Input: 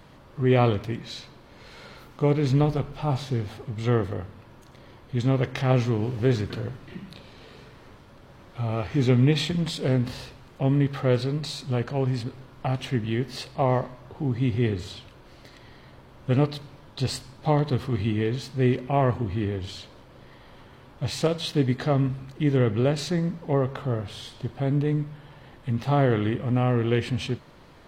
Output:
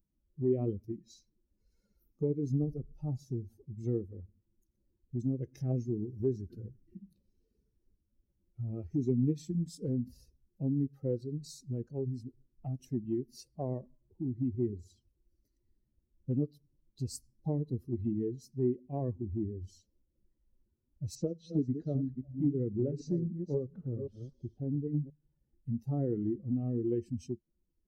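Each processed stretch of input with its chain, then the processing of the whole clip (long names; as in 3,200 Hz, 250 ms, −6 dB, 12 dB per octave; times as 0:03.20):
0:21.15–0:25.10: delay that plays each chunk backwards 266 ms, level −6 dB + high-frequency loss of the air 98 metres + echo through a band-pass that steps 116 ms, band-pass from 5,000 Hz, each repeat −1.4 octaves, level −10.5 dB
whole clip: spectral dynamics exaggerated over time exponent 2; drawn EQ curve 110 Hz 0 dB, 350 Hz +9 dB, 1,200 Hz −25 dB, 3,400 Hz −24 dB, 5,600 Hz −1 dB; downward compressor 2 to 1, threshold −35 dBFS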